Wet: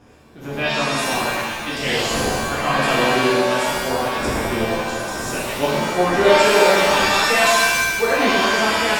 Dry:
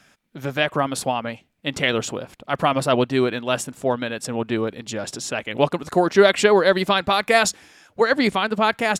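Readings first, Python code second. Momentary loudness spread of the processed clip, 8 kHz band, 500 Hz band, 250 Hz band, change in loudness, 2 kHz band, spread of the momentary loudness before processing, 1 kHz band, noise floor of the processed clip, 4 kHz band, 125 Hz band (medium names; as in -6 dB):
10 LU, +5.5 dB, +1.5 dB, +0.5 dB, +3.5 dB, +5.5 dB, 14 LU, +4.0 dB, -31 dBFS, +5.0 dB, +0.5 dB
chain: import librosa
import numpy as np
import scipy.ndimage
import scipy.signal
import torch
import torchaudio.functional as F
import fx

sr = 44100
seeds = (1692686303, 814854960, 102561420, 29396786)

y = fx.dmg_wind(x, sr, seeds[0], corner_hz=410.0, level_db=-34.0)
y = fx.rev_shimmer(y, sr, seeds[1], rt60_s=1.3, semitones=7, shimmer_db=-2, drr_db=-8.0)
y = y * librosa.db_to_amplitude(-9.0)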